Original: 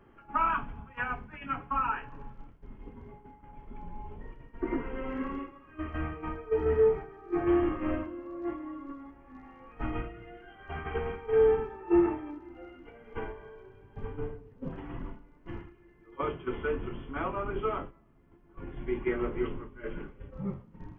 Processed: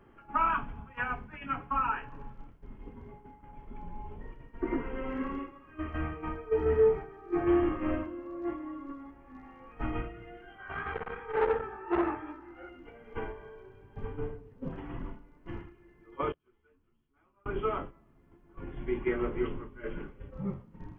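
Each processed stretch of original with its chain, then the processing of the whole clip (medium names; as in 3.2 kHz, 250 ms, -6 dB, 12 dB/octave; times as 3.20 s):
10.58–12.69 s: peaking EQ 1.4 kHz +10.5 dB 1.2 oct + chorus 2.8 Hz, delay 15 ms, depth 6.2 ms + transformer saturation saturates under 850 Hz
16.32–17.46 s: peaking EQ 540 Hz -4 dB 0.96 oct + inverted gate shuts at -38 dBFS, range -32 dB + three-phase chorus
whole clip: none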